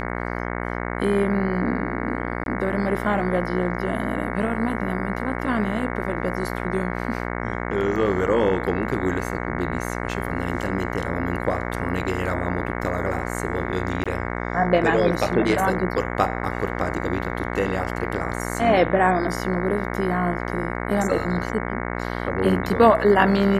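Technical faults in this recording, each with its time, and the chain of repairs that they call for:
mains buzz 60 Hz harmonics 37 −28 dBFS
0:02.44–0:02.46: drop-out 22 ms
0:14.04–0:14.06: drop-out 16 ms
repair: hum removal 60 Hz, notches 37
repair the gap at 0:02.44, 22 ms
repair the gap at 0:14.04, 16 ms

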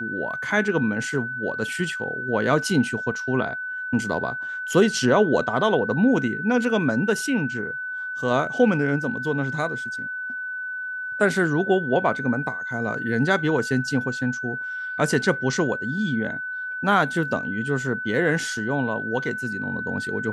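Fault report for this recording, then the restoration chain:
whistle 1,500 Hz −28 dBFS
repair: notch filter 1,500 Hz, Q 30

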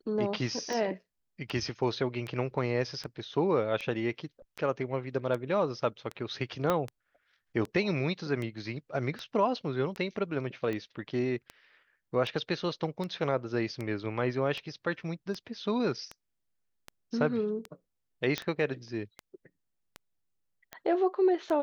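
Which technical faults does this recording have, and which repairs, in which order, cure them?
scratch tick 78 rpm −23 dBFS
0:06.70: click −14 dBFS
0:18.38: click −15 dBFS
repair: click removal

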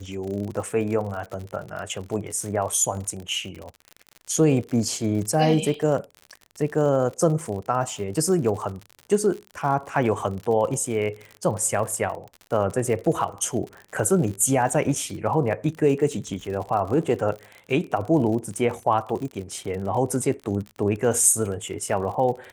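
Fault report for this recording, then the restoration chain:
surface crackle 59 per second −31 dBFS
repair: click removal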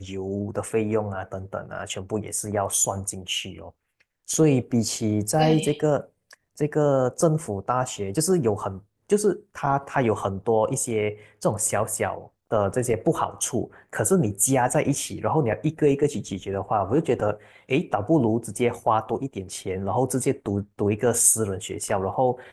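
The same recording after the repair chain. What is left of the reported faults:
none of them is left

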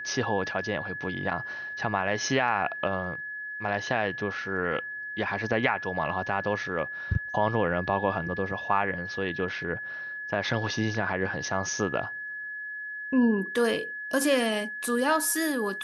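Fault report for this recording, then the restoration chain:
whistle 1,700 Hz −34 dBFS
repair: notch filter 1,700 Hz, Q 30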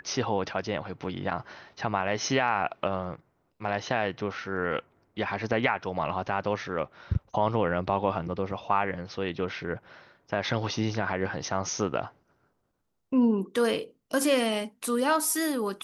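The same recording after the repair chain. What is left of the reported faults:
none of them is left

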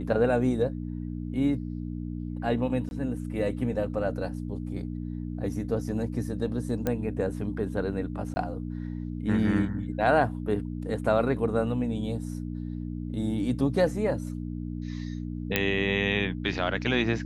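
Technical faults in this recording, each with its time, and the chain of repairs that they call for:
mains hum 60 Hz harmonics 5 −34 dBFS
0:02.89–0:02.91: drop-out 21 ms
0:06.87: click −14 dBFS
0:08.34–0:08.36: drop-out 20 ms
0:15.56: click −7 dBFS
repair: click removal
hum removal 60 Hz, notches 5
repair the gap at 0:02.89, 21 ms
repair the gap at 0:08.34, 20 ms

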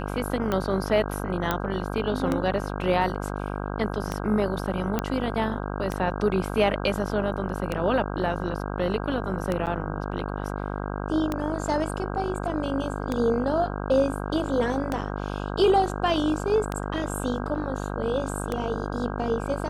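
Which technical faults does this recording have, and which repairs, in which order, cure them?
mains buzz 50 Hz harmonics 32 −31 dBFS
scratch tick 33 1/3 rpm −13 dBFS
0:01.51: click −10 dBFS
0:04.99: click −11 dBFS
0:09.66–0:09.67: drop-out 8.1 ms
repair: click removal
hum removal 50 Hz, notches 32
repair the gap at 0:09.66, 8.1 ms

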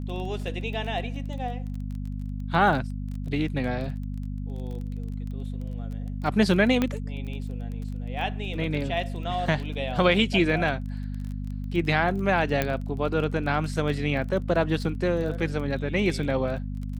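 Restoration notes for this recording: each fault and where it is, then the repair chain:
surface crackle 20 per second −34 dBFS
mains hum 50 Hz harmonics 5 −32 dBFS
0:06.82: click −11 dBFS
0:12.62: click −10 dBFS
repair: click removal
hum removal 50 Hz, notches 5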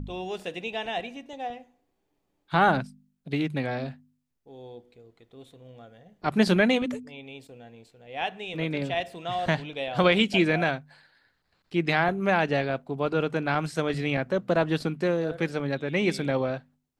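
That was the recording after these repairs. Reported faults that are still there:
none of them is left

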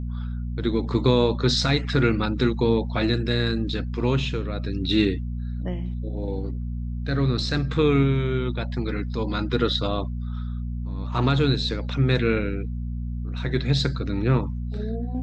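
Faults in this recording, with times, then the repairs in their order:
mains hum 60 Hz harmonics 4 −29 dBFS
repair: hum removal 60 Hz, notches 4

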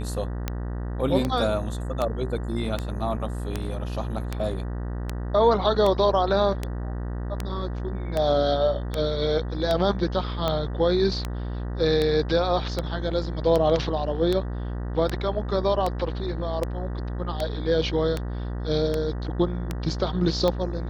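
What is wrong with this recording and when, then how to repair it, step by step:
mains buzz 60 Hz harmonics 32 −30 dBFS
scratch tick 78 rpm −12 dBFS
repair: click removal
hum removal 60 Hz, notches 32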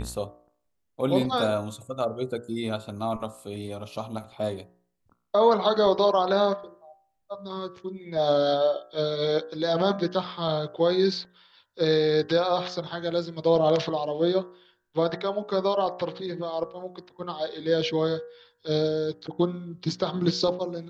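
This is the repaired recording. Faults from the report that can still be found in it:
none of them is left

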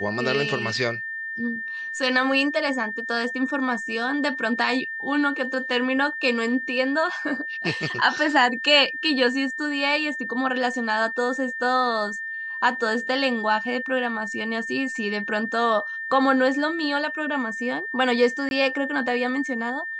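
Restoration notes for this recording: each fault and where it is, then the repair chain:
whistle 1,800 Hz −29 dBFS
0:18.49–0:18.51: drop-out 21 ms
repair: notch filter 1,800 Hz, Q 30
repair the gap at 0:18.49, 21 ms

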